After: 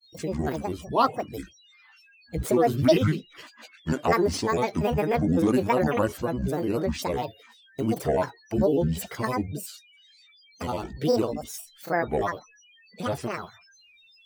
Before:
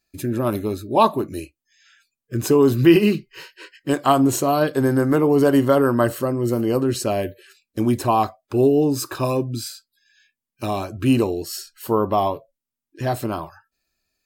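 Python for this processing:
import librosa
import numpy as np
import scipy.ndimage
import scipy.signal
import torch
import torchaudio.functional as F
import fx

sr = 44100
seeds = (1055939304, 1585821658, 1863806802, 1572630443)

y = x + 10.0 ** (-48.0 / 20.0) * np.sin(2.0 * np.pi * 3100.0 * np.arange(len(x)) / sr)
y = fx.granulator(y, sr, seeds[0], grain_ms=100.0, per_s=20.0, spray_ms=11.0, spread_st=12)
y = F.gain(torch.from_numpy(y), -5.0).numpy()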